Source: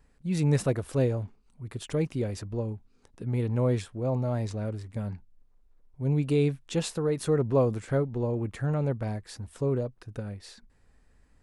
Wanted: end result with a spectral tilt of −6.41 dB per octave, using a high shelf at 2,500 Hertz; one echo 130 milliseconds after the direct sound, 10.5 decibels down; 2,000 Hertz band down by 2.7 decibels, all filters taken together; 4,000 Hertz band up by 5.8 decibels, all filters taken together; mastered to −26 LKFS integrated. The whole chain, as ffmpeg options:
ffmpeg -i in.wav -af "equalizer=frequency=2000:width_type=o:gain=-7.5,highshelf=frequency=2500:gain=5,equalizer=frequency=4000:width_type=o:gain=4.5,aecho=1:1:130:0.299,volume=3dB" out.wav

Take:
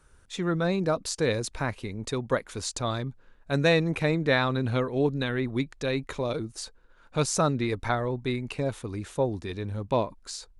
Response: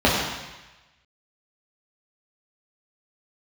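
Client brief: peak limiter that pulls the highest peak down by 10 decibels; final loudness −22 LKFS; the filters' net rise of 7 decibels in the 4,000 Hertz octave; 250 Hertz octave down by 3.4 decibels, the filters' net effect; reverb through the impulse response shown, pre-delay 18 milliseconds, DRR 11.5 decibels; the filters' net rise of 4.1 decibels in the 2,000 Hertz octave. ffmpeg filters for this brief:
-filter_complex "[0:a]equalizer=frequency=250:width_type=o:gain=-5,equalizer=frequency=2000:width_type=o:gain=3.5,equalizer=frequency=4000:width_type=o:gain=7,alimiter=limit=-17dB:level=0:latency=1,asplit=2[link_01][link_02];[1:a]atrim=start_sample=2205,adelay=18[link_03];[link_02][link_03]afir=irnorm=-1:irlink=0,volume=-33.5dB[link_04];[link_01][link_04]amix=inputs=2:normalize=0,volume=7.5dB"

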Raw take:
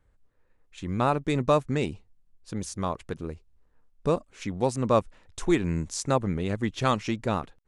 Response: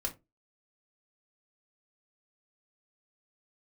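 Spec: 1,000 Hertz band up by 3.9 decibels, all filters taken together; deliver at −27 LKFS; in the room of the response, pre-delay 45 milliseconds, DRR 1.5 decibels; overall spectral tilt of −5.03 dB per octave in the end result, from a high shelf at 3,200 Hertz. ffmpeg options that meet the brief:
-filter_complex "[0:a]equalizer=frequency=1000:width_type=o:gain=5.5,highshelf=frequency=3200:gain=-6.5,asplit=2[link_01][link_02];[1:a]atrim=start_sample=2205,adelay=45[link_03];[link_02][link_03]afir=irnorm=-1:irlink=0,volume=-3.5dB[link_04];[link_01][link_04]amix=inputs=2:normalize=0,volume=-3dB"

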